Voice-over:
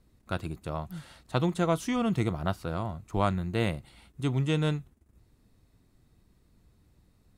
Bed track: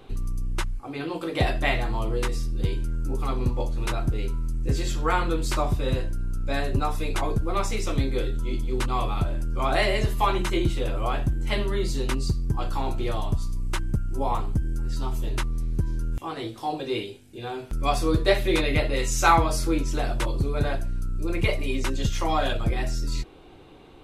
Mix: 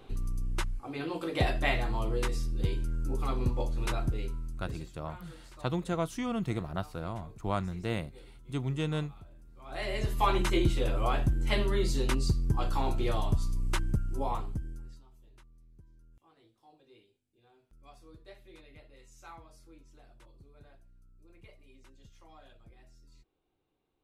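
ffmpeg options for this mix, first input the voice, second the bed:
-filter_complex "[0:a]adelay=4300,volume=-5dB[a];[1:a]volume=19.5dB,afade=t=out:st=3.97:d=0.94:silence=0.0794328,afade=t=in:st=9.65:d=0.72:silence=0.0630957,afade=t=out:st=13.78:d=1.25:silence=0.0354813[b];[a][b]amix=inputs=2:normalize=0"

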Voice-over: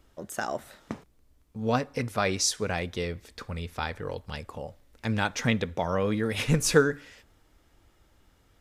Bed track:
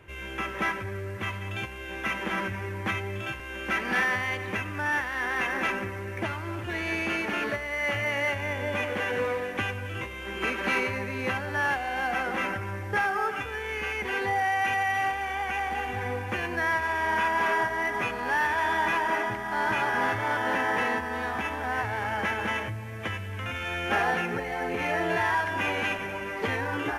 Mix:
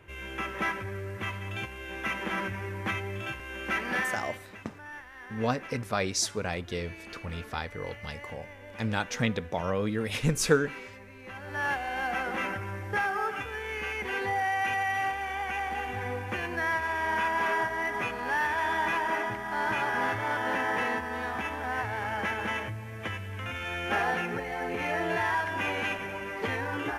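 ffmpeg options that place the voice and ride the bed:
-filter_complex "[0:a]adelay=3750,volume=-2.5dB[a];[1:a]volume=12dB,afade=t=out:st=3.79:d=0.69:silence=0.188365,afade=t=in:st=11.28:d=0.43:silence=0.199526[b];[a][b]amix=inputs=2:normalize=0"

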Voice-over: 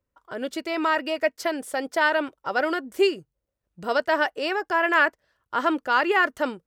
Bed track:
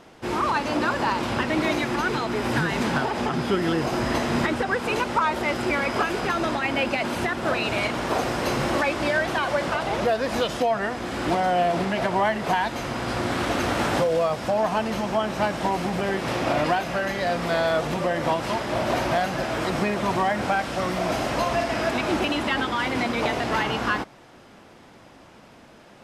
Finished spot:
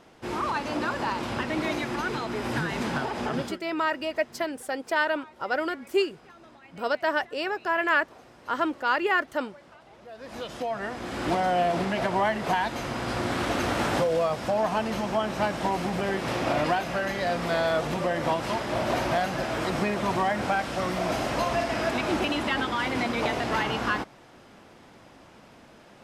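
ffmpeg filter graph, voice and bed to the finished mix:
-filter_complex "[0:a]adelay=2950,volume=-3.5dB[a];[1:a]volume=19dB,afade=t=out:st=3.37:d=0.22:silence=0.0841395,afade=t=in:st=10.05:d=1.28:silence=0.0630957[b];[a][b]amix=inputs=2:normalize=0"

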